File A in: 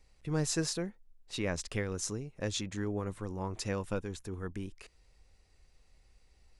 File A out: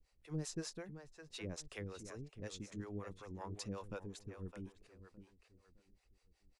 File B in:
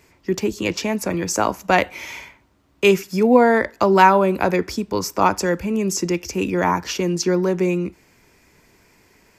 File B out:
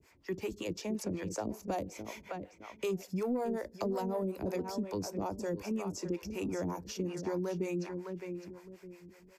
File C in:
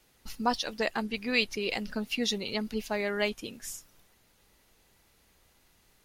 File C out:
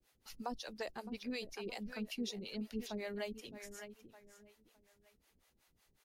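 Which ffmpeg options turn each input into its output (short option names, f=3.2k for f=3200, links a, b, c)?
-filter_complex "[0:a]asplit=2[a][b];[b]adelay=612,lowpass=f=3.5k:p=1,volume=-10.5dB,asplit=2[c][d];[d]adelay=612,lowpass=f=3.5k:p=1,volume=0.3,asplit=2[e][f];[f]adelay=612,lowpass=f=3.5k:p=1,volume=0.3[g];[a][c][e][g]amix=inputs=4:normalize=0,acrossover=split=830|4100[h][i][j];[i]acompressor=threshold=-37dB:ratio=6[k];[h][k][j]amix=inputs=3:normalize=0,asoftclip=type=tanh:threshold=-6.5dB,acrossover=split=440[l][m];[l]aeval=exprs='val(0)*(1-1/2+1/2*cos(2*PI*5.4*n/s))':c=same[n];[m]aeval=exprs='val(0)*(1-1/2-1/2*cos(2*PI*5.4*n/s))':c=same[o];[n][o]amix=inputs=2:normalize=0,acrossover=split=650|7300[p][q][r];[p]acompressor=threshold=-27dB:ratio=4[s];[q]acompressor=threshold=-38dB:ratio=4[t];[r]acompressor=threshold=-51dB:ratio=4[u];[s][t][u]amix=inputs=3:normalize=0,volume=-5.5dB"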